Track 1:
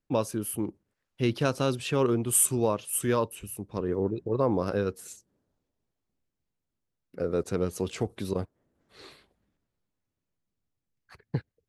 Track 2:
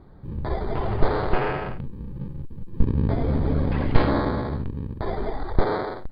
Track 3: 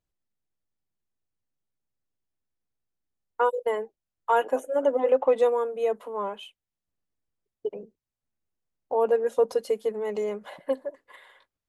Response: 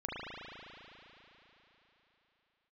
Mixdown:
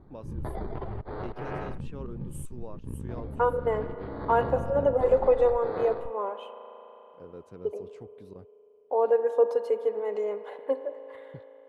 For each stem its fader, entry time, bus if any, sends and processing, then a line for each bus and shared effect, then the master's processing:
-16.5 dB, 0.00 s, no send, dry
-8.5 dB, 0.00 s, no send, negative-ratio compressor -27 dBFS, ratio -1
-1.0 dB, 0.00 s, send -12.5 dB, HPF 280 Hz 24 dB/oct; high shelf 5300 Hz -6 dB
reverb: on, RT60 3.8 s, pre-delay 36 ms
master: high shelf 2400 Hz -11 dB

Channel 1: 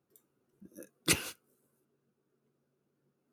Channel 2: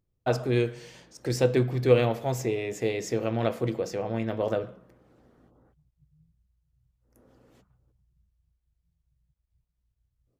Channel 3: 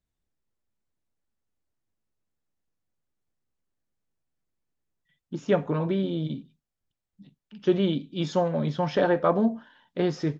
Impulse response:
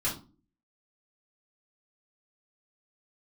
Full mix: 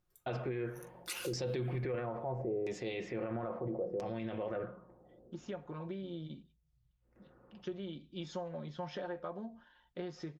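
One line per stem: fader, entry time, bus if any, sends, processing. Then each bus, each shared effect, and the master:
-2.5 dB, 0.00 s, no send, HPF 710 Hz
-5.0 dB, 0.00 s, no send, tilt -1.5 dB/oct; LFO low-pass saw down 0.75 Hz 430–5800 Hz
-9.0 dB, 0.00 s, no send, compressor 8:1, threshold -29 dBFS, peak gain reduction 13 dB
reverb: off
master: low shelf 270 Hz -5.5 dB; comb 5.6 ms, depth 39%; limiter -29 dBFS, peak gain reduction 18 dB

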